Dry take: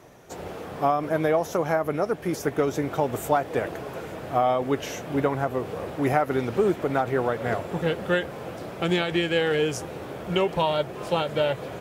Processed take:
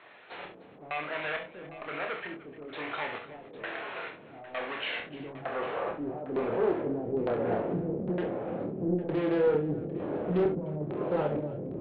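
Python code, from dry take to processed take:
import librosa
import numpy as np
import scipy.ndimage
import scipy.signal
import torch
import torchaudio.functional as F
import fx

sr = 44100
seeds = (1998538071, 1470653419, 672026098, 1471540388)

p1 = np.clip(10.0 ** (25.0 / 20.0) * x, -1.0, 1.0) / 10.0 ** (25.0 / 20.0)
p2 = fx.filter_sweep_bandpass(p1, sr, from_hz=2500.0, to_hz=330.0, start_s=4.85, end_s=7.33, q=0.94)
p3 = 10.0 ** (-37.0 / 20.0) * np.tanh(p2 / 10.0 ** (-37.0 / 20.0))
p4 = p2 + (p3 * 10.0 ** (-4.0 / 20.0))
p5 = fx.filter_lfo_lowpass(p4, sr, shape='square', hz=1.1, low_hz=300.0, high_hz=2900.0, q=1.0)
p6 = fx.brickwall_lowpass(p5, sr, high_hz=4300.0)
p7 = fx.doubler(p6, sr, ms=27.0, db=-5.5)
p8 = fx.echo_multitap(p7, sr, ms=(45, 66, 302, 805), db=(-9.5, -9.0, -17.5, -15.0))
y = fx.doppler_dist(p8, sr, depth_ms=0.31)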